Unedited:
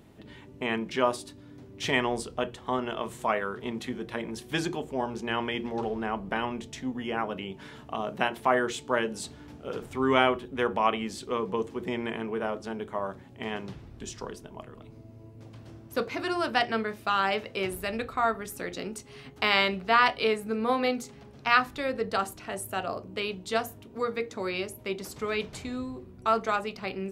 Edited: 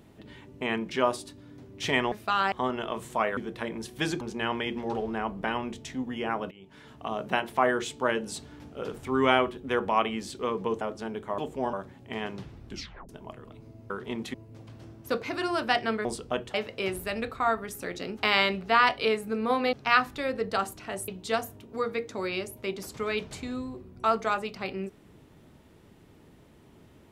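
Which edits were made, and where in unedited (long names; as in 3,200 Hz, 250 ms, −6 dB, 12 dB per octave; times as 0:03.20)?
0:02.12–0:02.61: swap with 0:16.91–0:17.31
0:03.46–0:03.90: move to 0:15.20
0:04.74–0:05.09: move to 0:13.03
0:07.39–0:08.02: fade in, from −20 dB
0:11.69–0:12.46: remove
0:14.01: tape stop 0.38 s
0:18.94–0:19.36: remove
0:20.92–0:21.33: remove
0:22.68–0:23.30: remove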